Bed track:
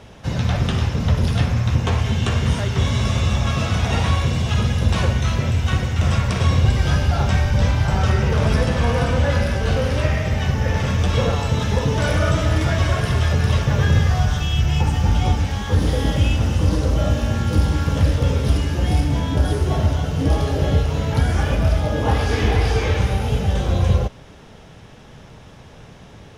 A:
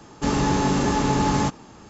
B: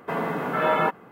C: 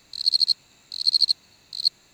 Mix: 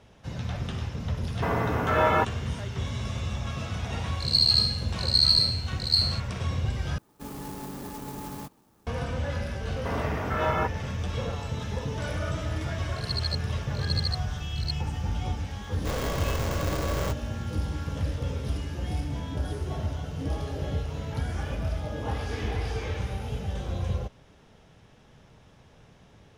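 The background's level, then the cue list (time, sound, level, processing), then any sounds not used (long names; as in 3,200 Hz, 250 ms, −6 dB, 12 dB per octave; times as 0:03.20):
bed track −12.5 dB
0:01.34: mix in B −0.5 dB
0:04.07: mix in C −4 dB + peak hold with a decay on every bin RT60 0.63 s
0:06.98: overwrite with A −17 dB + converter with an unsteady clock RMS 0.085 ms
0:09.77: mix in B −5 dB
0:12.83: mix in C −13 dB
0:15.63: mix in A −11 dB + ring modulator with a square carrier 270 Hz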